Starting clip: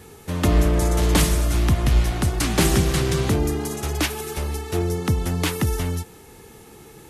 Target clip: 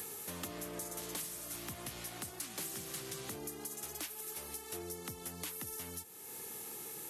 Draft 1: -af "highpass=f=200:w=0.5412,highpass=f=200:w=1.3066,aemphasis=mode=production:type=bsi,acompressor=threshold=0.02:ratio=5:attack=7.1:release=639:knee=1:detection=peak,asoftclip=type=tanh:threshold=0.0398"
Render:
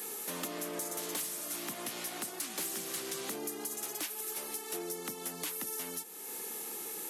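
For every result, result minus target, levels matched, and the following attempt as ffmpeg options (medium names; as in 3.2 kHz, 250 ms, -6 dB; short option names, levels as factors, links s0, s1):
125 Hz band -9.0 dB; compression: peak gain reduction -5.5 dB
-af "highpass=f=81:w=0.5412,highpass=f=81:w=1.3066,aemphasis=mode=production:type=bsi,acompressor=threshold=0.02:ratio=5:attack=7.1:release=639:knee=1:detection=peak,asoftclip=type=tanh:threshold=0.0398"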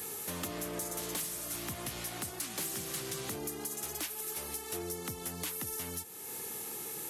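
compression: peak gain reduction -5.5 dB
-af "highpass=f=81:w=0.5412,highpass=f=81:w=1.3066,aemphasis=mode=production:type=bsi,acompressor=threshold=0.00891:ratio=5:attack=7.1:release=639:knee=1:detection=peak,asoftclip=type=tanh:threshold=0.0398"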